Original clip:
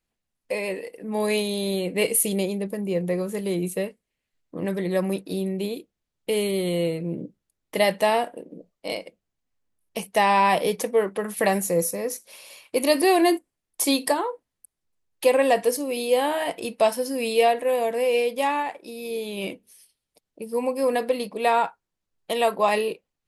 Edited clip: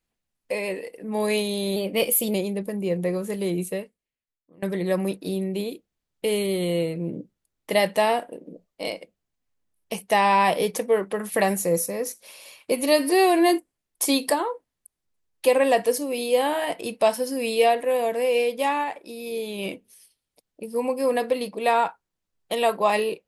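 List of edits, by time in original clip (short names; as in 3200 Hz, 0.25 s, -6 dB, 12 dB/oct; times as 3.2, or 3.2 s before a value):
1.76–2.39 speed 108%
3.66–4.67 fade out quadratic, to -23 dB
12.76–13.28 stretch 1.5×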